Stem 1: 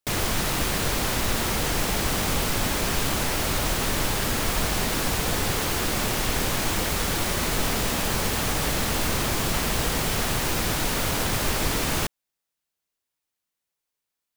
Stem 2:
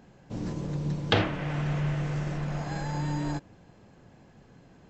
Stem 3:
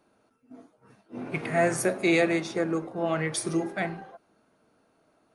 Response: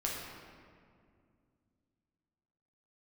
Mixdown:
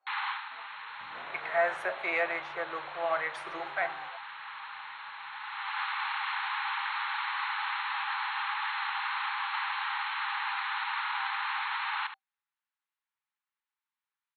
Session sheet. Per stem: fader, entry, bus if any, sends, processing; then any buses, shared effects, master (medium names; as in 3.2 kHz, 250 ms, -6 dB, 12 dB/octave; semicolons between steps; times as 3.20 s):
+0.5 dB, 0.00 s, no send, echo send -10.5 dB, FFT band-pass 780–4300 Hz; auto duck -18 dB, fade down 0.20 s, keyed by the third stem
-11.5 dB, 0.70 s, no send, no echo send, compression, threshold -38 dBFS, peak gain reduction 18.5 dB
-7.5 dB, 0.00 s, no send, no echo send, level rider gain up to 12 dB; three-band isolator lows -22 dB, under 530 Hz, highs -18 dB, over 3.3 kHz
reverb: none
echo: delay 72 ms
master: three-band isolator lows -14 dB, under 570 Hz, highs -13 dB, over 2.3 kHz